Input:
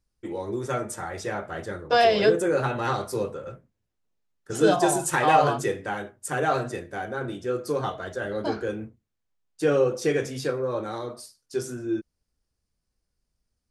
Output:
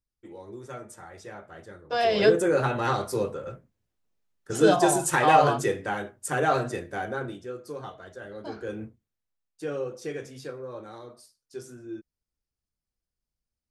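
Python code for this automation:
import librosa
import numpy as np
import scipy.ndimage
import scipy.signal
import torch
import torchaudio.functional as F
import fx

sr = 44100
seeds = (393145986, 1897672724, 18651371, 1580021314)

y = fx.gain(x, sr, db=fx.line((1.82, -11.5), (2.23, 0.5), (7.13, 0.5), (7.56, -10.5), (8.46, -10.5), (8.84, -1.0), (9.66, -10.5)))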